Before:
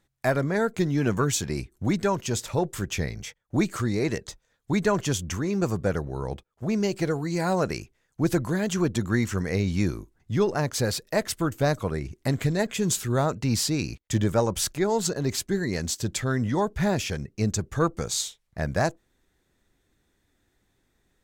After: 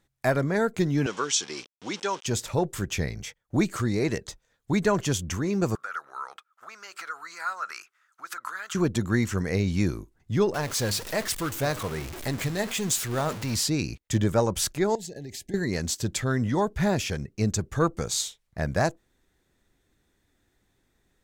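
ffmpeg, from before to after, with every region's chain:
-filter_complex "[0:a]asettb=1/sr,asplit=3[s0][s1][s2];[s0]atrim=end=1.064[s3];[s1]atrim=start=1.06:end=2.26,asetpts=PTS-STARTPTS,afade=t=in:d=0.004:c=qsin,afade=t=out:st=1.196:d=0.004:c=qsin,aeval=exprs='val(0)*gte(abs(val(0)),0.0133)':c=same,highpass=470,equalizer=f=650:t=q:w=4:g=-9,equalizer=f=1800:t=q:w=4:g=-3,equalizer=f=3200:t=q:w=4:g=8,equalizer=f=5600:t=q:w=4:g=7,lowpass=f=7900:w=0.5412,lowpass=f=7900:w=1.3066[s4];[s2]atrim=start=2.256[s5];[s3][s4]acrossfade=d=0.004:c1=hsin:c2=qsin[s6];[s6][s5]acrossfade=d=0.004:c1=qsin:c2=hsin,asettb=1/sr,asplit=3[s7][s8][s9];[s7]atrim=end=5.754[s10];[s8]atrim=start=5.75:end=8.75,asetpts=PTS-STARTPTS,afade=t=in:d=0.004:c=qsin,afade=t=out:st=2.996:d=0.004:c=qsin,acompressor=threshold=0.0355:ratio=12:attack=3.2:release=140:knee=1:detection=peak,highpass=f=1300:t=q:w=8[s11];[s9]atrim=start=8.746[s12];[s10][s11]acrossfade=d=0.004:c1=hsin:c2=qsin[s13];[s13][s12]acrossfade=d=0.004:c1=qsin:c2=hsin,asettb=1/sr,asplit=3[s14][s15][s16];[s14]atrim=end=10.544[s17];[s15]atrim=start=10.54:end=13.56,asetpts=PTS-STARTPTS,afade=t=in:d=0.004:c=qsin,afade=t=out:st=3.016:d=0.004:c=qsin,aeval=exprs='val(0)+0.5*0.0422*sgn(val(0))':c=same,tiltshelf=f=700:g=-3,flanger=delay=1.7:depth=8.3:regen=83:speed=1.2:shape=sinusoidal[s18];[s16]atrim=start=13.556[s19];[s17][s18]acrossfade=d=0.004:c1=hsin:c2=qsin[s20];[s20][s19]acrossfade=d=0.004:c1=qsin:c2=hsin,asettb=1/sr,asplit=3[s21][s22][s23];[s21]atrim=end=14.954[s24];[s22]atrim=start=14.95:end=15.54,asetpts=PTS-STARTPTS,afade=t=in:d=0.004:c=qsin,afade=t=out:st=0.586:d=0.004:c=qsin,acompressor=threshold=0.02:ratio=12:attack=3.2:release=140:knee=1:detection=peak,asuperstop=centerf=1200:order=20:qfactor=1.6[s25];[s23]atrim=start=15.536[s26];[s24][s25]acrossfade=d=0.004:c1=hsin:c2=qsin[s27];[s27][s26]acrossfade=d=0.004:c1=qsin:c2=hsin"

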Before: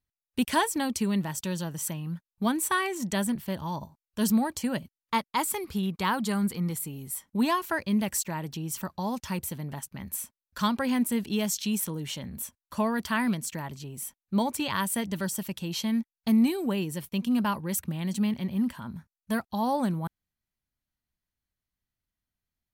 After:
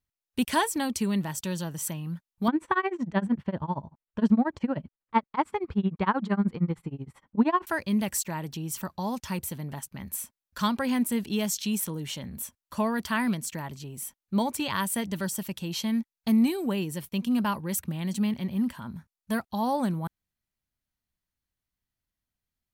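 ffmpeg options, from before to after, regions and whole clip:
-filter_complex "[0:a]asettb=1/sr,asplit=3[s0][s1][s2];[s0]atrim=end=2.484[s3];[s1]atrim=start=2.48:end=7.67,asetpts=PTS-STARTPTS,afade=t=in:d=0.004:c=qsin,afade=t=out:st=5.186:d=0.004:c=qsin,lowpass=1700,acontrast=62,tremolo=f=13:d=0.96[s4];[s2]atrim=start=7.666[s5];[s3][s4]acrossfade=d=0.004:c1=hsin:c2=qsin[s6];[s6][s5]acrossfade=d=0.004:c1=qsin:c2=hsin"

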